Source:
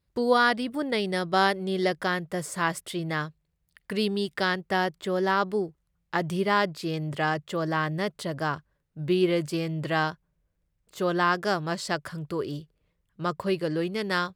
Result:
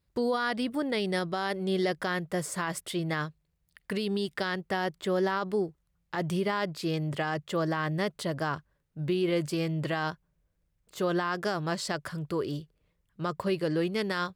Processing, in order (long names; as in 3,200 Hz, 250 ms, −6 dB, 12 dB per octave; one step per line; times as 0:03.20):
brickwall limiter −20 dBFS, peak gain reduction 11 dB